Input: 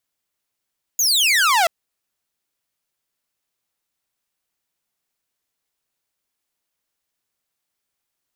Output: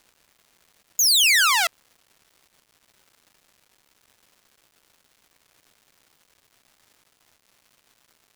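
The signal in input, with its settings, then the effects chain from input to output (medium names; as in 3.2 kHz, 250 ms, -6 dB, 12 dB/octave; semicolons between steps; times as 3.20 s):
laser zap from 6.9 kHz, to 640 Hz, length 0.68 s saw, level -11 dB
high-pass 1.3 kHz; crackle 470 per s -46 dBFS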